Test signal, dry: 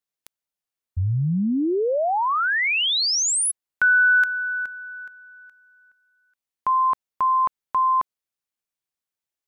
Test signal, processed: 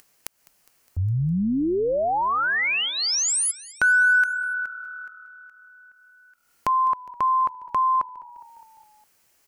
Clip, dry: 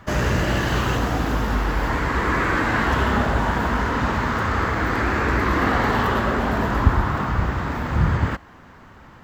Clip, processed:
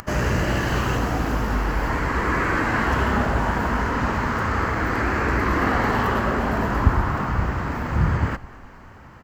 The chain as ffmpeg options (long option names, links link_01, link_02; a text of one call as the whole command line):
ffmpeg -i in.wav -filter_complex "[0:a]acompressor=mode=upward:threshold=-43dB:ratio=2.5:attack=44:release=225:knee=2.83:detection=peak,equalizer=frequency=3600:width=5:gain=-8,asplit=6[link_01][link_02][link_03][link_04][link_05][link_06];[link_02]adelay=205,afreqshift=-38,volume=-20.5dB[link_07];[link_03]adelay=410,afreqshift=-76,volume=-24.7dB[link_08];[link_04]adelay=615,afreqshift=-114,volume=-28.8dB[link_09];[link_05]adelay=820,afreqshift=-152,volume=-33dB[link_10];[link_06]adelay=1025,afreqshift=-190,volume=-37.1dB[link_11];[link_01][link_07][link_08][link_09][link_10][link_11]amix=inputs=6:normalize=0,volume=-1dB" out.wav